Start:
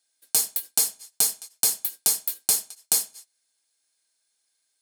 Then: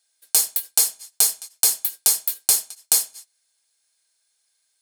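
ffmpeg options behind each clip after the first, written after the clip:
-af "equalizer=f=200:w=0.76:g=-9.5,volume=4dB"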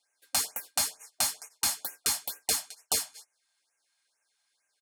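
-filter_complex "[0:a]aecho=1:1:6.9:0.32,asplit=2[a][b];[b]highpass=f=720:p=1,volume=10dB,asoftclip=type=tanh:threshold=-1dB[c];[a][c]amix=inputs=2:normalize=0,lowpass=f=1.3k:p=1,volume=-6dB,afftfilt=real='re*(1-between(b*sr/1024,380*pow(4100/380,0.5+0.5*sin(2*PI*2.2*pts/sr))/1.41,380*pow(4100/380,0.5+0.5*sin(2*PI*2.2*pts/sr))*1.41))':imag='im*(1-between(b*sr/1024,380*pow(4100/380,0.5+0.5*sin(2*PI*2.2*pts/sr))/1.41,380*pow(4100/380,0.5+0.5*sin(2*PI*2.2*pts/sr))*1.41))':win_size=1024:overlap=0.75"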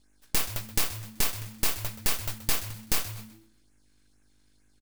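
-filter_complex "[0:a]aeval=exprs='val(0)+0.000501*(sin(2*PI*50*n/s)+sin(2*PI*2*50*n/s)/2+sin(2*PI*3*50*n/s)/3+sin(2*PI*4*50*n/s)/4+sin(2*PI*5*50*n/s)/5)':c=same,aeval=exprs='abs(val(0))':c=same,asplit=4[a][b][c][d];[b]adelay=127,afreqshift=-110,volume=-13.5dB[e];[c]adelay=254,afreqshift=-220,volume=-23.1dB[f];[d]adelay=381,afreqshift=-330,volume=-32.8dB[g];[a][e][f][g]amix=inputs=4:normalize=0,volume=4dB"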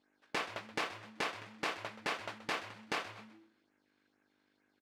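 -af "highpass=350,lowpass=2.3k,volume=1dB"

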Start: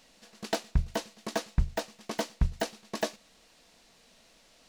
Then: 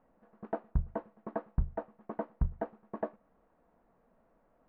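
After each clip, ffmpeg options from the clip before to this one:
-af "lowpass=f=1.3k:w=0.5412,lowpass=f=1.3k:w=1.3066,volume=-4dB"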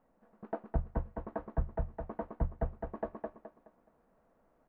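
-af "aecho=1:1:211|422|633|844:0.708|0.227|0.0725|0.0232,volume=-2.5dB"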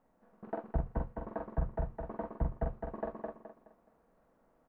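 -filter_complex "[0:a]asplit=2[a][b];[b]adelay=45,volume=-4dB[c];[a][c]amix=inputs=2:normalize=0,volume=-1dB"

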